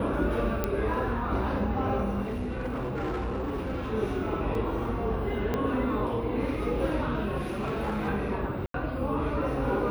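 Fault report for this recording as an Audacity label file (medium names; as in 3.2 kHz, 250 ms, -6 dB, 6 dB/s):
0.640000	0.640000	pop -13 dBFS
2.230000	3.930000	clipped -28 dBFS
4.550000	4.550000	dropout 2.4 ms
5.540000	5.540000	pop -16 dBFS
7.390000	8.090000	clipped -26.5 dBFS
8.660000	8.740000	dropout 83 ms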